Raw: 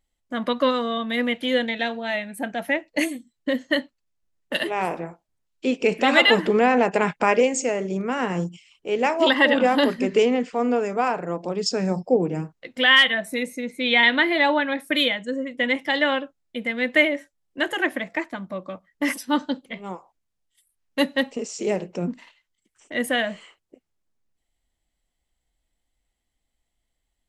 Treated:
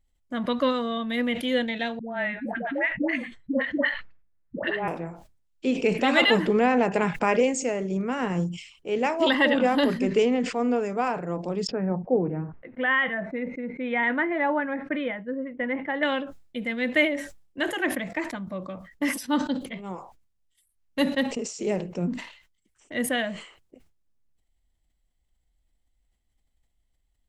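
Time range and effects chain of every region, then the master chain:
1.99–4.88 synth low-pass 1800 Hz, resonance Q 1.7 + dispersion highs, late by 0.127 s, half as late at 580 Hz
11.67–16.03 LPF 1900 Hz 24 dB/oct + low shelf 200 Hz -5 dB
whole clip: low shelf 160 Hz +10.5 dB; sustainer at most 100 dB/s; gain -4.5 dB

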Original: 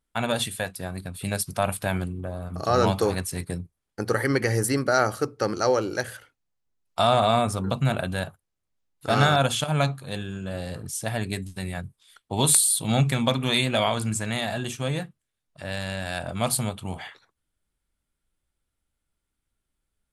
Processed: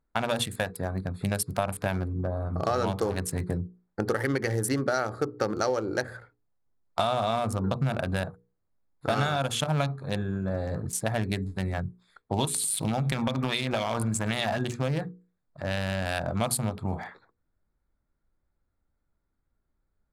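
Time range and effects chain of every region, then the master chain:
12.45–14.59 compressor 8:1, threshold -24 dBFS + feedback echo 95 ms, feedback 41%, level -19 dB + LFO bell 3.9 Hz 780–5900 Hz +6 dB
whole clip: Wiener smoothing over 15 samples; notches 60/120/180/240/300/360/420/480 Hz; compressor, threshold -28 dBFS; gain +4.5 dB

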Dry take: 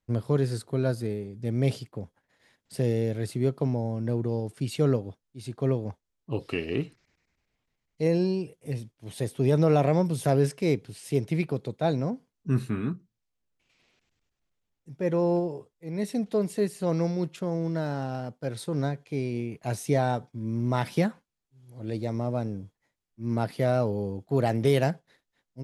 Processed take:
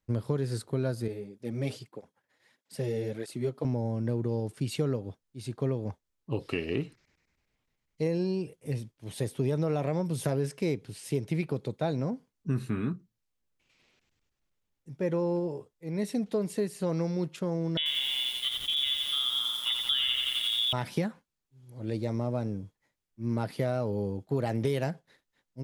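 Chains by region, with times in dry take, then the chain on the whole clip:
1.08–3.65 HPF 230 Hz 6 dB/oct + tape flanging out of phase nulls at 1.6 Hz, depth 6.1 ms
17.77–20.73 inverted band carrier 3600 Hz + lo-fi delay 87 ms, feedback 80%, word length 7-bit, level -4 dB
whole clip: notch 700 Hz, Q 16; compressor 5:1, threshold -25 dBFS

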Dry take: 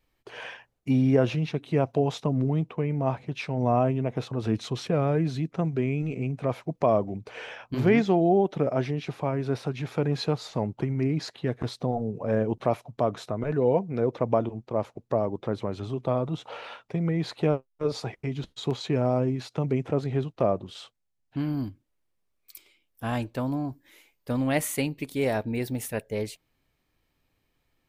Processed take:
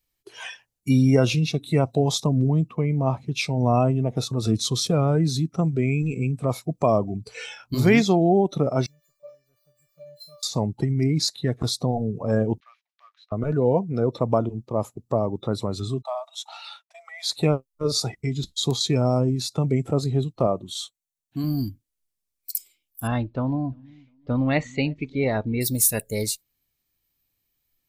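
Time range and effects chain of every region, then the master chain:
8.86–10.43 median filter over 15 samples + resonator 590 Hz, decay 0.39 s, mix 100%
12.6–13.32 G.711 law mismatch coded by A + ladder high-pass 1400 Hz, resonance 25% + air absorption 270 m
16.02–17.31 steep high-pass 620 Hz 72 dB/oct + dynamic EQ 1200 Hz, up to -4 dB, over -47 dBFS, Q 1.5 + expander -49 dBFS
20.47–21.44 low shelf 120 Hz -11 dB + notch 5000 Hz, Q 6.8
23.07–25.61 Gaussian blur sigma 2.5 samples + feedback echo 0.35 s, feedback 34%, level -23 dB
whole clip: high shelf 2500 Hz +11.5 dB; spectral noise reduction 14 dB; tone controls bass +5 dB, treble +7 dB; gain +1 dB

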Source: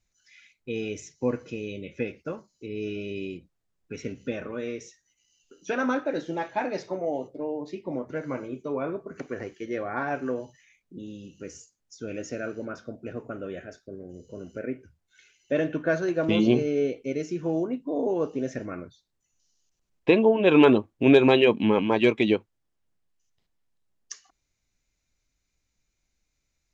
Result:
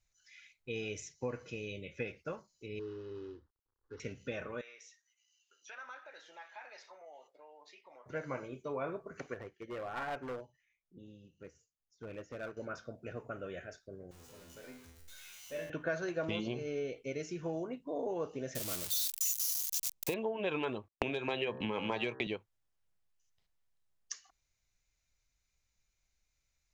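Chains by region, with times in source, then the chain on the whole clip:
2.79–4 CVSD 32 kbps + LPF 2100 Hz + fixed phaser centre 650 Hz, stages 6
4.61–8.06 HPF 1100 Hz + high shelf 4800 Hz -7.5 dB + compressor 2:1, threshold -50 dBFS
9.34–12.57 LPF 1600 Hz 6 dB/oct + hard clip -28.5 dBFS + upward expander, over -50 dBFS
14.11–15.7 zero-crossing step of -37 dBFS + high shelf 4100 Hz +7 dB + resonator 84 Hz, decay 0.75 s, mix 90%
18.55–20.14 switching spikes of -19.5 dBFS + bell 1600 Hz -7.5 dB 1.4 oct
20.88–22.27 gate -34 dBFS, range -58 dB + de-hum 64.67 Hz, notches 29 + three-band squash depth 100%
whole clip: compressor 10:1, threshold -24 dBFS; bell 270 Hz -9.5 dB 1.4 oct; gain -3 dB

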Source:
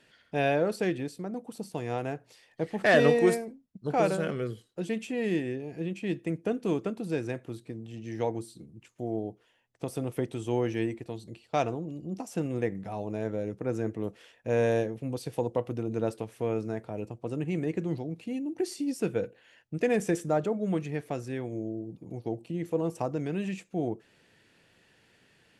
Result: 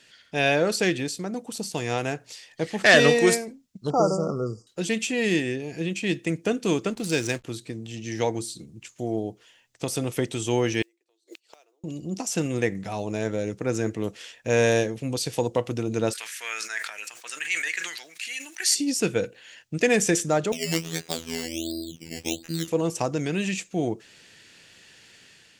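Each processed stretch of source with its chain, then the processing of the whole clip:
3.9–4.67 brick-wall FIR band-stop 1400–4600 Hz + air absorption 120 m
6.9–7.44 high shelf 4800 Hz +12 dB + backlash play -45.5 dBFS + mismatched tape noise reduction decoder only
10.82–11.84 Chebyshev high-pass 330 Hz, order 5 + flipped gate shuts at -37 dBFS, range -37 dB + modulation noise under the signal 29 dB
16.13–18.75 resonant high-pass 1700 Hz, resonance Q 3 + high shelf 8300 Hz +10 dB + sustainer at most 64 dB/s
20.52–22.68 LPF 6100 Hz + decimation with a swept rate 14×, swing 60% 1.4 Hz + robotiser 82.1 Hz
whole clip: EQ curve 780 Hz 0 dB, 7000 Hz +15 dB, 10000 Hz +7 dB; AGC gain up to 4.5 dB

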